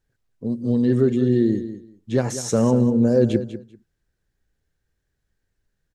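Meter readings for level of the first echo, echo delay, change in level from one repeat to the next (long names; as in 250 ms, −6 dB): −12.0 dB, 195 ms, −15.5 dB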